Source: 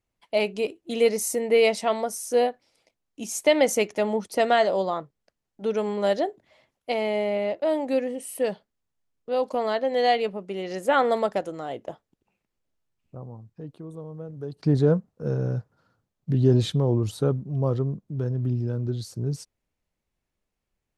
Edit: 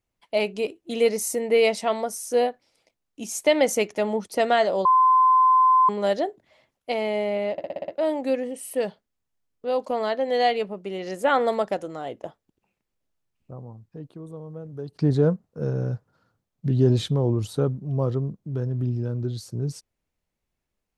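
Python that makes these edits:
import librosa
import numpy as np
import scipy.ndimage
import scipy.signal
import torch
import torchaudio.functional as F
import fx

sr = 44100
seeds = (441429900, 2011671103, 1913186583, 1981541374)

y = fx.edit(x, sr, fx.bleep(start_s=4.85, length_s=1.04, hz=1030.0, db=-13.5),
    fx.stutter(start_s=7.52, slice_s=0.06, count=7), tone=tone)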